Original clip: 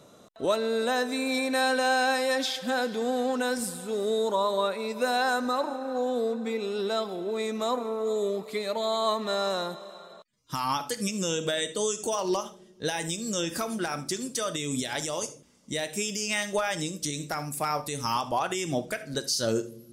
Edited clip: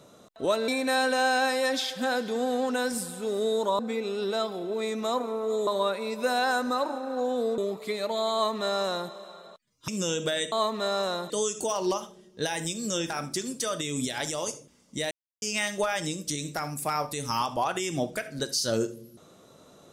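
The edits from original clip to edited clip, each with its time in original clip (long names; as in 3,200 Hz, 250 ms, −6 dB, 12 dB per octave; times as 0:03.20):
0:00.68–0:01.34: remove
0:06.36–0:08.24: move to 0:04.45
0:08.99–0:09.77: duplicate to 0:11.73
0:10.54–0:11.09: remove
0:13.53–0:13.85: remove
0:15.86–0:16.17: silence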